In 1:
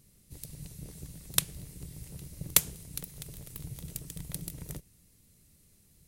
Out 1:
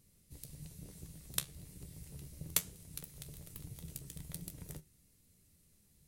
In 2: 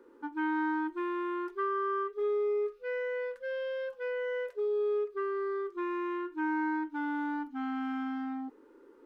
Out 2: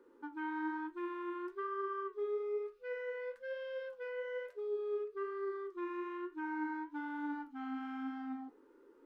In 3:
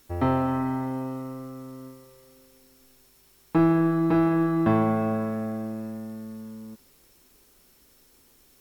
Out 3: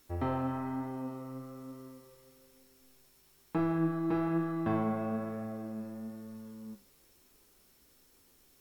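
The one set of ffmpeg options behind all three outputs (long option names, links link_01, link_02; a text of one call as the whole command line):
ffmpeg -i in.wav -filter_complex "[0:a]asplit=2[link_01][link_02];[link_02]acompressor=threshold=-36dB:ratio=6,volume=-3dB[link_03];[link_01][link_03]amix=inputs=2:normalize=0,flanger=delay=9.9:depth=5.3:regen=63:speed=1.1:shape=triangular,volume=-6dB" out.wav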